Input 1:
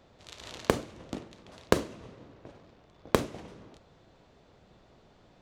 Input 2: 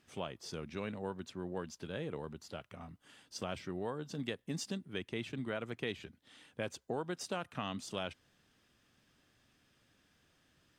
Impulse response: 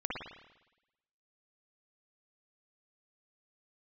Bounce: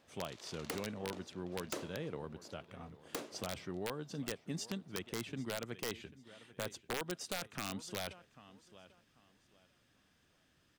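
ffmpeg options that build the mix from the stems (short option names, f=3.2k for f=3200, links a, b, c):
-filter_complex "[0:a]highpass=330,volume=-9dB[a];[1:a]volume=-1.5dB,asplit=2[b][c];[c]volume=-18dB,aecho=0:1:792|1584|2376|3168:1|0.26|0.0676|0.0176[d];[a][b][d]amix=inputs=3:normalize=0,aeval=exprs='(mod(26.6*val(0)+1,2)-1)/26.6':c=same"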